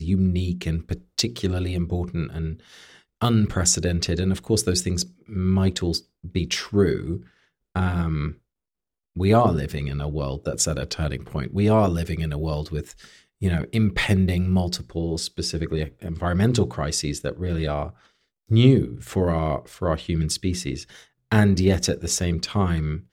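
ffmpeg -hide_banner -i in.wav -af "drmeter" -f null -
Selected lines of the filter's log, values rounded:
Channel 1: DR: 13.0
Overall DR: 13.0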